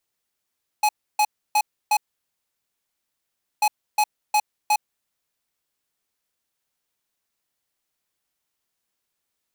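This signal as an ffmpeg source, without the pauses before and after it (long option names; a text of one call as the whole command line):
ffmpeg -f lavfi -i "aevalsrc='0.126*(2*lt(mod(843*t,1),0.5)-1)*clip(min(mod(mod(t,2.79),0.36),0.06-mod(mod(t,2.79),0.36))/0.005,0,1)*lt(mod(t,2.79),1.44)':duration=5.58:sample_rate=44100" out.wav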